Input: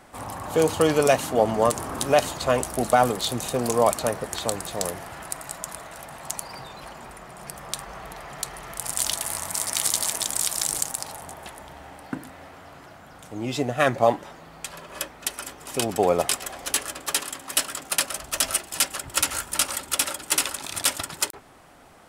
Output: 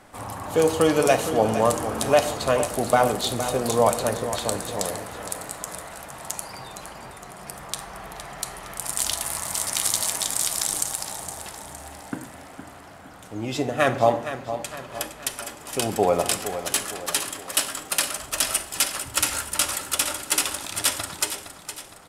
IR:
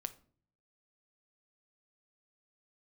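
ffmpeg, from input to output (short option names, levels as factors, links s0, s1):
-filter_complex "[0:a]aecho=1:1:463|926|1389|1852|2315:0.282|0.13|0.0596|0.0274|0.0126[s0];[1:a]atrim=start_sample=2205,asetrate=27783,aresample=44100[s1];[s0][s1]afir=irnorm=-1:irlink=0"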